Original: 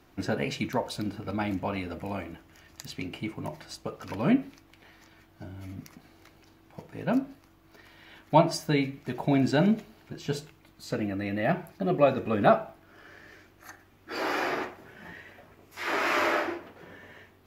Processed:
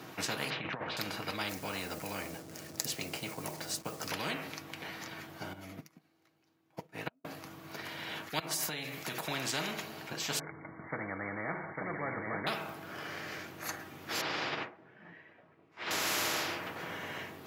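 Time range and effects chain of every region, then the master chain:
0.5–0.97 LPF 2500 Hz 24 dB/oct + negative-ratio compressor -32 dBFS, ratio -0.5
1.49–4.11 level-crossing sampler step -53.5 dBFS + band shelf 1700 Hz -8 dB 2.6 oct
5.53–7.25 flipped gate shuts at -23 dBFS, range -32 dB + upward expander 2.5:1, over -53 dBFS
8.39–9.28 high shelf 4800 Hz +7.5 dB + compressor 20:1, threshold -34 dBFS
10.39–12.47 brick-wall FIR low-pass 2300 Hz + echo 0.85 s -5.5 dB
14.21–15.91 LPF 2700 Hz + upward expander 2.5:1, over -42 dBFS
whole clip: HPF 110 Hz 24 dB/oct; comb 6.3 ms, depth 31%; spectral compressor 4:1; gain -6 dB

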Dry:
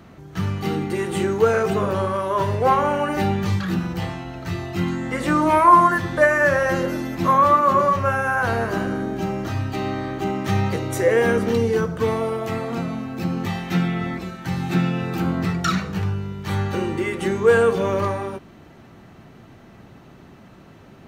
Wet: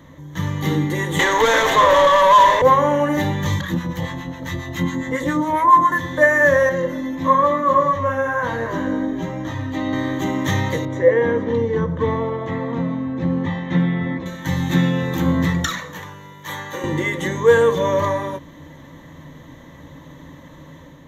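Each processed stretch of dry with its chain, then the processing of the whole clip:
1.19–2.62 HPF 550 Hz + overdrive pedal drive 26 dB, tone 3000 Hz, clips at -9.5 dBFS
3.61–5.92 echo 0.472 s -13.5 dB + harmonic tremolo 7.3 Hz, crossover 840 Hz
6.69–9.93 LPF 3400 Hz 6 dB/oct + chorus 1.1 Hz, delay 16.5 ms, depth 2.9 ms
10.85–14.26 HPF 55 Hz + tape spacing loss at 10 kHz 30 dB
15.65–16.84 HPF 950 Hz 6 dB/oct + bell 3900 Hz -4.5 dB 1.8 oct
whole clip: ripple EQ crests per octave 1.1, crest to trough 14 dB; AGC gain up to 4 dB; gain -1 dB

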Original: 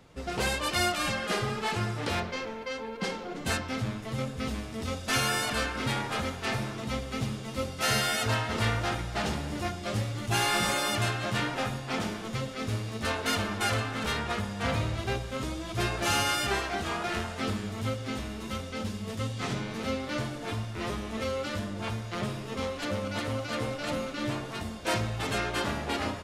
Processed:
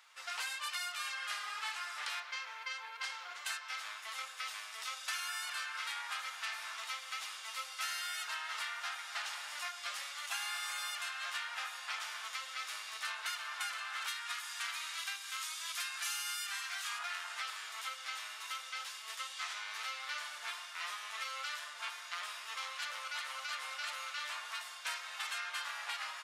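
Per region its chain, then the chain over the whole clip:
14.08–16.99 HPF 960 Hz + high shelf 5100 Hz +9.5 dB
whole clip: HPF 1100 Hz 24 dB/oct; compressor 6:1, threshold -38 dBFS; gain +1 dB

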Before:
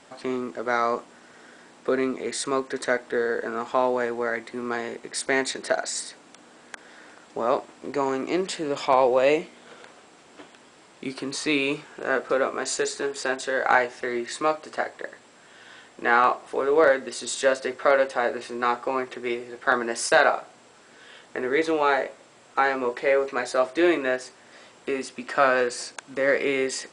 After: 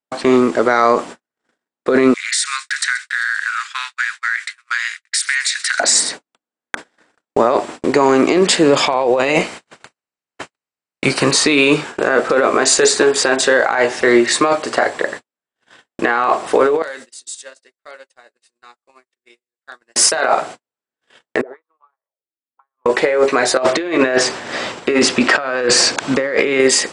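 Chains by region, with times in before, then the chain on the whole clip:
2.14–5.8 steep high-pass 1400 Hz 48 dB/oct + compressor, threshold -31 dBFS + thin delay 0.131 s, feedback 73%, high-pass 2700 Hz, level -16 dB
9.19–11.32 spectral limiter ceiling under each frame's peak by 13 dB + notch 3400 Hz, Q 8
16.82–19.96 pre-emphasis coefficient 0.9 + compressor 4:1, threshold -43 dBFS
21.41–22.86 auto-wah 230–1100 Hz, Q 8.9, up, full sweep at -21 dBFS + compressor 16:1, threshold -44 dBFS
23.57–26.6 LPF 6300 Hz + negative-ratio compressor -33 dBFS
whole clip: gate -43 dBFS, range -58 dB; negative-ratio compressor -26 dBFS, ratio -1; maximiser +16 dB; gain -1 dB

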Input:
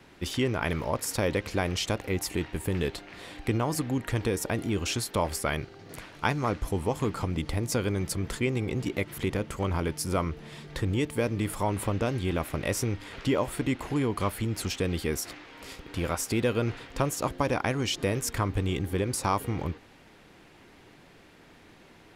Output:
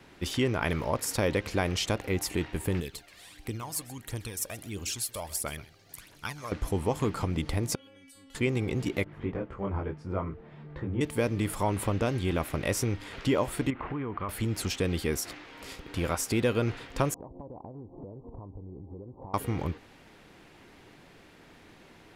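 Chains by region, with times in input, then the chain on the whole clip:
2.8–6.52 pre-emphasis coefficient 0.8 + phaser 1.5 Hz, delay 1.9 ms, feedback 55% + echo 0.13 s -18 dB
7.75–8.35 bell 3000 Hz +13 dB 0.4 oct + metallic resonator 270 Hz, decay 0.57 s, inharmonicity 0.002 + compressor, threshold -50 dBFS
9.04–11.01 LPF 1500 Hz + detuned doubles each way 14 cents
13.7–14.29 LPF 2600 Hz 24 dB/oct + bell 1200 Hz +7.5 dB 0.47 oct + compressor, threshold -30 dBFS
17.14–19.34 steep low-pass 1000 Hz 72 dB/oct + compressor 16:1, threshold -39 dBFS
whole clip: dry

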